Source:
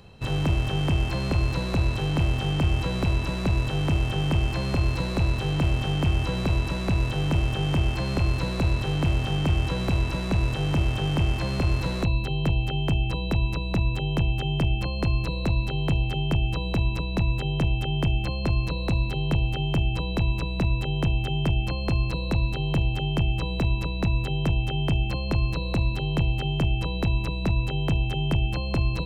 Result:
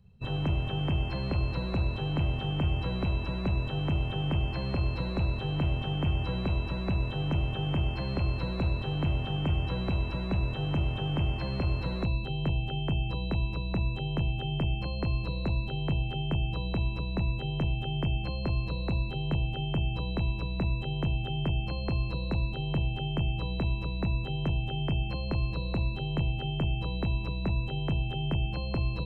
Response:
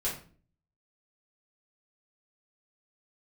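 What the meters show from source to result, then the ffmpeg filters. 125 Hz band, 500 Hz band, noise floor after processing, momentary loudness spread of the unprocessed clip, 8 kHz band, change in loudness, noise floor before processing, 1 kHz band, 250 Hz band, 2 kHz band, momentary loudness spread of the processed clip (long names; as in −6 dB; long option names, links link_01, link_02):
−5.0 dB, −5.5 dB, −34 dBFS, 2 LU, can't be measured, −5.5 dB, −29 dBFS, −5.5 dB, −5.0 dB, −6.5 dB, 2 LU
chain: -filter_complex "[0:a]asplit=2[link_01][link_02];[1:a]atrim=start_sample=2205,asetrate=38367,aresample=44100[link_03];[link_02][link_03]afir=irnorm=-1:irlink=0,volume=-20.5dB[link_04];[link_01][link_04]amix=inputs=2:normalize=0,afftdn=noise_reduction=18:noise_floor=-40,volume=-6dB"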